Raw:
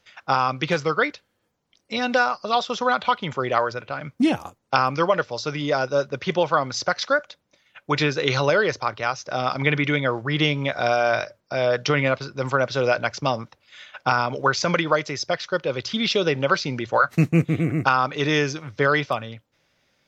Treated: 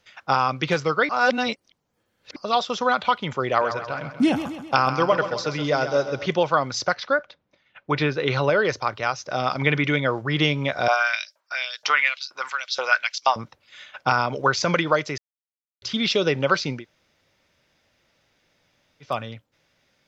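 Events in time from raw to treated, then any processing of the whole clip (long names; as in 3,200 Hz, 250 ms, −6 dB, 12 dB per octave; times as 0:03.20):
0:01.09–0:02.36: reverse
0:03.48–0:06.26: repeating echo 131 ms, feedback 53%, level −10 dB
0:06.95–0:08.65: high-frequency loss of the air 190 metres
0:10.88–0:13.36: auto-filter high-pass saw up 2.1 Hz 770–5,400 Hz
0:15.18–0:15.82: silence
0:16.78–0:19.08: fill with room tone, crossfade 0.16 s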